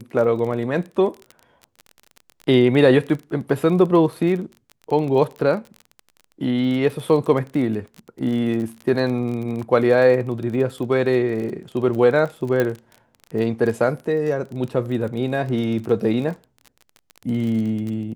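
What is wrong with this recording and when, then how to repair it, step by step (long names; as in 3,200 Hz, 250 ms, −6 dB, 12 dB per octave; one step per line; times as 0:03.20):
surface crackle 29 per second −28 dBFS
0:12.60: click −9 dBFS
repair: click removal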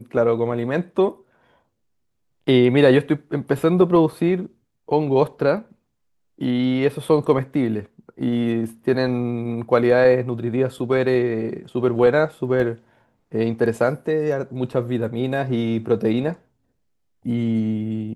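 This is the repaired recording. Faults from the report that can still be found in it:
0:12.60: click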